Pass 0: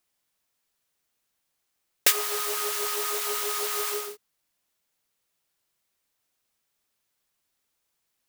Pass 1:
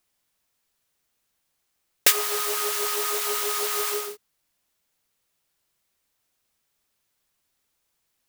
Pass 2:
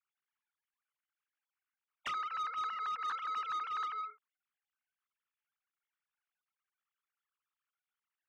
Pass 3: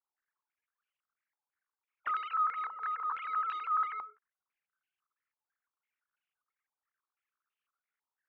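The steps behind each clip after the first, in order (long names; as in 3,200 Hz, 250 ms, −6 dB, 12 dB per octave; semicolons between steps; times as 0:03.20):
low-shelf EQ 120 Hz +4.5 dB; level +2.5 dB
three sine waves on the formant tracks; four-pole ladder high-pass 1,100 Hz, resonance 60%; soft clipping −27 dBFS, distortion −14 dB; level −6 dB
low shelf with overshoot 250 Hz −8 dB, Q 1.5; low-pass on a step sequencer 6 Hz 900–2,800 Hz; level −4 dB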